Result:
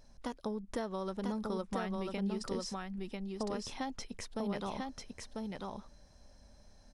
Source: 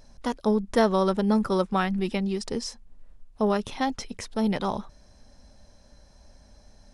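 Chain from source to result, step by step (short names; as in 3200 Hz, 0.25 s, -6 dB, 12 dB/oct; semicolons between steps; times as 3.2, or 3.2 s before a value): compressor 6:1, threshold -27 dBFS, peak gain reduction 11 dB; on a send: echo 0.994 s -3 dB; on the sum: gain -7.5 dB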